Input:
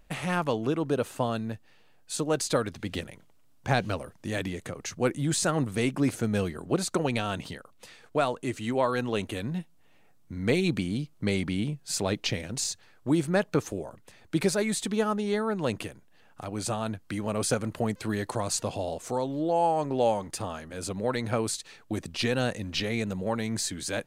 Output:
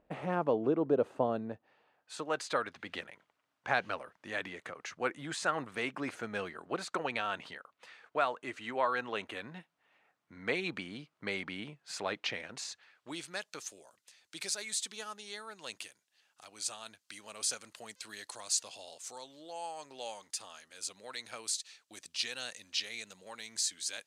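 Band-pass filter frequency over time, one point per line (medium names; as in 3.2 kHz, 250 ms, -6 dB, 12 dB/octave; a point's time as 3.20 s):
band-pass filter, Q 0.9
1.33 s 480 Hz
2.24 s 1.5 kHz
12.69 s 1.5 kHz
13.43 s 5.8 kHz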